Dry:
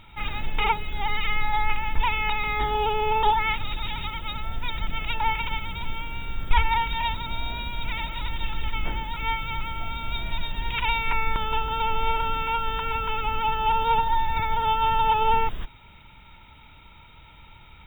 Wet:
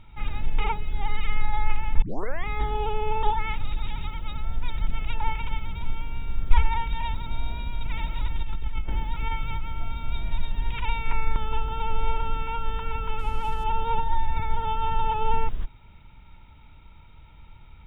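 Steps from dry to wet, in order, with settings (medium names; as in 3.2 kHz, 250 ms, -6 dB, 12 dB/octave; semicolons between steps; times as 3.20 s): 13.19–13.64 s: CVSD coder 64 kbps; tilt EQ -2 dB/octave; 2.02 s: tape start 0.45 s; 7.78–9.64 s: compressor with a negative ratio -17 dBFS, ratio -1; trim -6 dB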